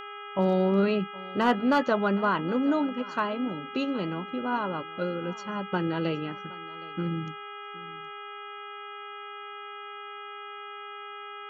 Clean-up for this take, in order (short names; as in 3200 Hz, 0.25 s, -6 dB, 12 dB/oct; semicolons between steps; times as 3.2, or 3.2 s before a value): clip repair -14.5 dBFS; de-hum 409.5 Hz, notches 8; notch 1300 Hz, Q 30; inverse comb 0.768 s -20.5 dB